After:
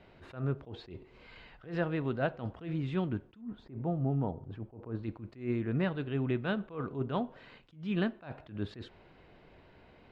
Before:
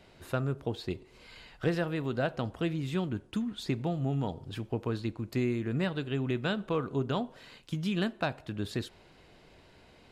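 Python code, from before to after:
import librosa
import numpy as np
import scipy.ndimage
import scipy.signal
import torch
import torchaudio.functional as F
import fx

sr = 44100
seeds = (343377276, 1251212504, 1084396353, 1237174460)

y = fx.lowpass(x, sr, hz=fx.steps((0.0, 2700.0), (3.41, 1100.0), (5.03, 2500.0)), slope=12)
y = fx.attack_slew(y, sr, db_per_s=160.0)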